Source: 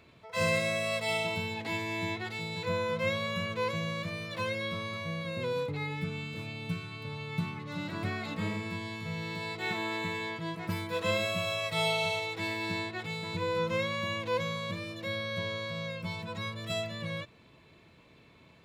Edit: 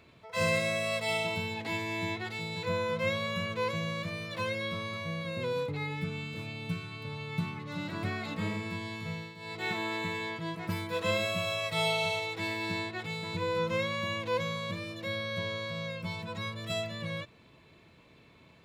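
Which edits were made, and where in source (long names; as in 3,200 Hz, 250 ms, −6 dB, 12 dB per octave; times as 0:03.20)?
0:09.10–0:09.60: duck −13.5 dB, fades 0.25 s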